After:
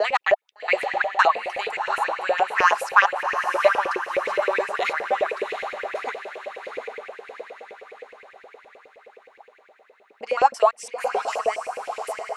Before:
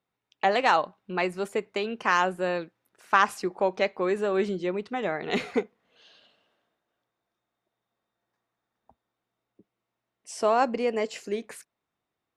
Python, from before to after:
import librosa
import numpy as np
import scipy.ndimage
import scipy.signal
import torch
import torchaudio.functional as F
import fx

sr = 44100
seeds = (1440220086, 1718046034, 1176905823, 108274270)

p1 = fx.block_reorder(x, sr, ms=170.0, group=4)
p2 = fx.high_shelf(p1, sr, hz=4600.0, db=7.0)
p3 = p2 + fx.echo_diffused(p2, sr, ms=755, feedback_pct=54, wet_db=-6.0, dry=0)
p4 = fx.filter_lfo_highpass(p3, sr, shape='saw_up', hz=9.6, low_hz=440.0, high_hz=2600.0, q=7.0)
y = F.gain(torch.from_numpy(p4), -3.0).numpy()